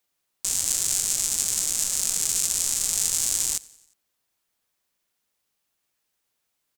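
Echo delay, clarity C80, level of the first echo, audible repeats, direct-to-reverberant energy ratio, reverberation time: 89 ms, none, -23.0 dB, 3, none, none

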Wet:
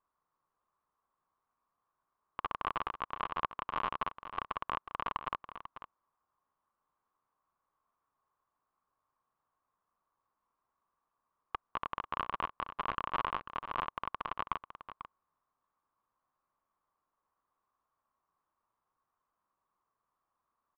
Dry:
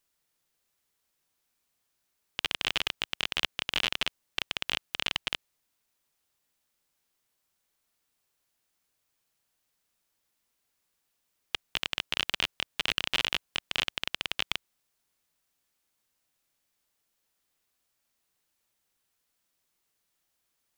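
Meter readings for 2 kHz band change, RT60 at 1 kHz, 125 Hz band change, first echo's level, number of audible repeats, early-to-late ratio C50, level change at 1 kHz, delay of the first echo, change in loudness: -11.0 dB, none, -4.0 dB, -11.5 dB, 1, none, +7.5 dB, 0.493 s, -7.5 dB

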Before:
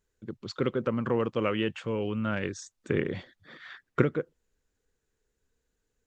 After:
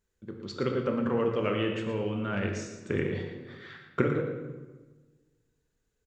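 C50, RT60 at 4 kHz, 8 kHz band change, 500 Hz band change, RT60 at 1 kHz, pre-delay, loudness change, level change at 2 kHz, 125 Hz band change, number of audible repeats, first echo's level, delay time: 4.0 dB, 0.85 s, -0.5 dB, +0.5 dB, 1.2 s, 5 ms, -0.5 dB, -0.5 dB, 0.0 dB, 1, -9.5 dB, 0.115 s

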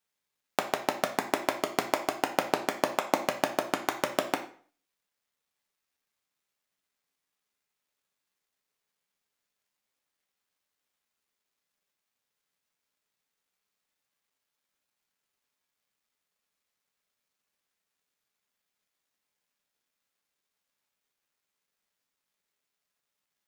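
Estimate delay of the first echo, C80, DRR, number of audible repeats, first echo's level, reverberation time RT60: none, 14.5 dB, 2.5 dB, none, none, 0.45 s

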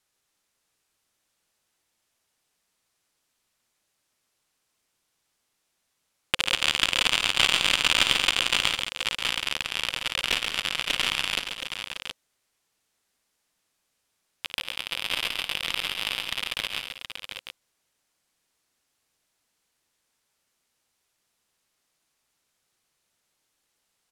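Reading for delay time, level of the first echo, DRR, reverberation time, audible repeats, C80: 54 ms, -14.5 dB, none, none, 5, none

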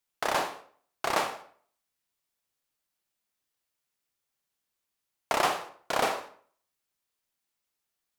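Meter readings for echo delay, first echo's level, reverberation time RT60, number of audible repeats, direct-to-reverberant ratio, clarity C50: none, none, 0.50 s, none, 7.5 dB, 10.5 dB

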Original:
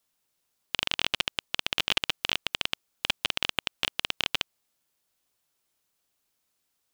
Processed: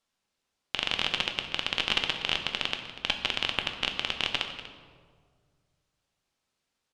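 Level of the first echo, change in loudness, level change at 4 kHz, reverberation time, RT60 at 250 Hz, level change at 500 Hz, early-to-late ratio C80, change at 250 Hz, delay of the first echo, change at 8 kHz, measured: -15.0 dB, 0.0 dB, 0.0 dB, 1.8 s, 2.1 s, +1.5 dB, 8.0 dB, +2.0 dB, 0.242 s, -5.0 dB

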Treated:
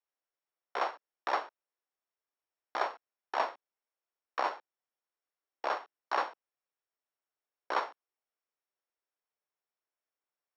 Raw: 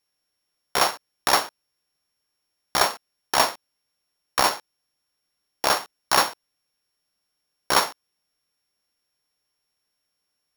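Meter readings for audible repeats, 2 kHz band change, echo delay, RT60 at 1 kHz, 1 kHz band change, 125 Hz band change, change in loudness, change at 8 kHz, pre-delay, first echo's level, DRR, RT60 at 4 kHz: none, -12.5 dB, none, none, -9.5 dB, under -35 dB, -13.0 dB, under -30 dB, none, none, none, none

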